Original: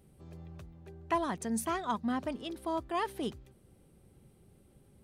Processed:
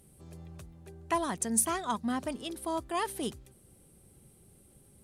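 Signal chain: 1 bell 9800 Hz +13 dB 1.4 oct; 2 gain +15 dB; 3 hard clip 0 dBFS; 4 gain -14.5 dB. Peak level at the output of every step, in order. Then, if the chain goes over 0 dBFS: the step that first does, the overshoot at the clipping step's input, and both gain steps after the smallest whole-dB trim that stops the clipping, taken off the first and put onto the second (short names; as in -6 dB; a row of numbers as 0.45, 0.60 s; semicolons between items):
-12.0, +3.0, 0.0, -14.5 dBFS; step 2, 3.0 dB; step 2 +12 dB, step 4 -11.5 dB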